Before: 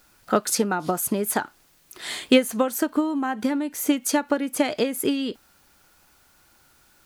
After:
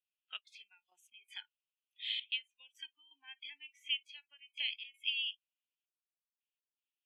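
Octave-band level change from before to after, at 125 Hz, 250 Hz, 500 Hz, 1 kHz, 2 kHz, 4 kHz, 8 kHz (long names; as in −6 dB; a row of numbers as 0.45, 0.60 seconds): can't be measured, below −40 dB, below −40 dB, below −35 dB, −12.0 dB, −4.5 dB, below −40 dB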